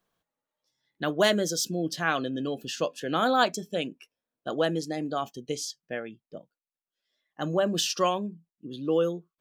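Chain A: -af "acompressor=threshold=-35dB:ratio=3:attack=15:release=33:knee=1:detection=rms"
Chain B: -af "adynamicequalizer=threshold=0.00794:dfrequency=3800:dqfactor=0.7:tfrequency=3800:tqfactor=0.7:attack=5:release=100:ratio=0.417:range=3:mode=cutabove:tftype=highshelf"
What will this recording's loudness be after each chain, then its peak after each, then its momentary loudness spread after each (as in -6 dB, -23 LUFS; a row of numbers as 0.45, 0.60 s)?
-35.5, -28.5 LUFS; -19.0, -9.5 dBFS; 10, 14 LU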